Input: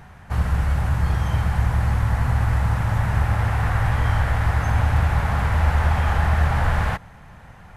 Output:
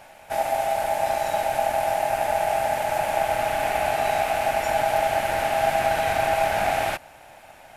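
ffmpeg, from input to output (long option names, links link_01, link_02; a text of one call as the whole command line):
ffmpeg -i in.wav -af "aeval=exprs='val(0)*sin(2*PI*730*n/s)':channel_layout=same,crystalizer=i=3.5:c=0,volume=-2dB" out.wav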